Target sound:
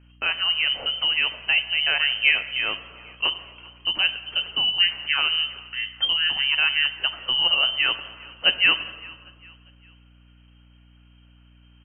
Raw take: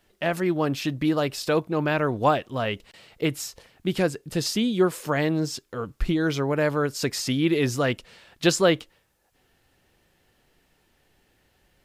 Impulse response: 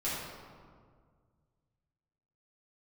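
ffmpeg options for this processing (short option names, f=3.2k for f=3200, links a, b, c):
-filter_complex "[0:a]lowpass=f=2.7k:t=q:w=0.5098,lowpass=f=2.7k:t=q:w=0.6013,lowpass=f=2.7k:t=q:w=0.9,lowpass=f=2.7k:t=q:w=2.563,afreqshift=-3200,aecho=1:1:401|802|1203:0.0708|0.029|0.0119,asplit=2[a][b];[1:a]atrim=start_sample=2205,asetrate=48510,aresample=44100[c];[b][c]afir=irnorm=-1:irlink=0,volume=-15dB[d];[a][d]amix=inputs=2:normalize=0,aeval=exprs='val(0)+0.00251*(sin(2*PI*60*n/s)+sin(2*PI*2*60*n/s)/2+sin(2*PI*3*60*n/s)/3+sin(2*PI*4*60*n/s)/4+sin(2*PI*5*60*n/s)/5)':c=same"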